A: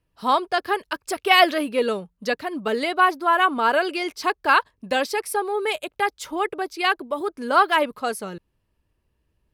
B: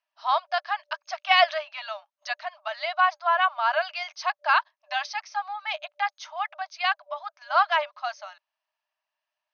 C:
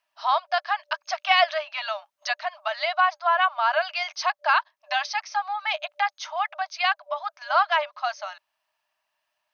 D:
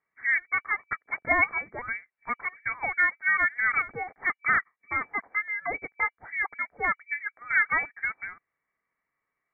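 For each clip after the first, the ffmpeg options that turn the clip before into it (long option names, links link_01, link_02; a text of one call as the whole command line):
ffmpeg -i in.wav -af "afftfilt=real='re*between(b*sr/4096,590,6500)':imag='im*between(b*sr/4096,590,6500)':win_size=4096:overlap=0.75,volume=-3.5dB" out.wav
ffmpeg -i in.wav -af "acompressor=threshold=-38dB:ratio=1.5,volume=8dB" out.wav
ffmpeg -i in.wav -af "lowpass=frequency=2500:width_type=q:width=0.5098,lowpass=frequency=2500:width_type=q:width=0.6013,lowpass=frequency=2500:width_type=q:width=0.9,lowpass=frequency=2500:width_type=q:width=2.563,afreqshift=-2900,volume=-3dB" out.wav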